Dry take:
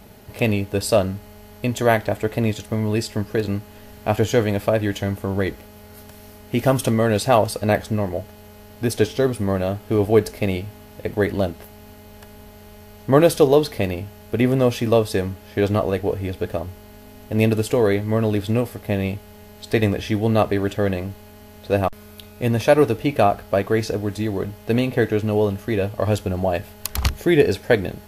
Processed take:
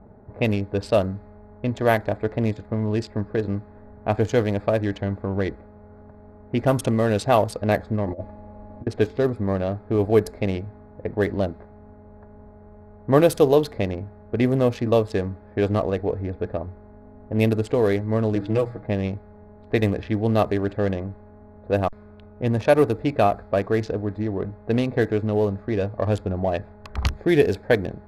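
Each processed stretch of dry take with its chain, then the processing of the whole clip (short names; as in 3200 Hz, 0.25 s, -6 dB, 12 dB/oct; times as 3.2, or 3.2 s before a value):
8.06–8.87 bell 1500 Hz -9 dB 0.28 oct + comb 3.5 ms, depth 57% + negative-ratio compressor -28 dBFS, ratio -0.5
18.35–18.87 high shelf 8600 Hz -5.5 dB + notches 60/120/180/240/300 Hz + comb 6.2 ms, depth 75%
whole clip: Wiener smoothing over 15 samples; low-pass opened by the level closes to 1200 Hz, open at -13 dBFS; gain -2 dB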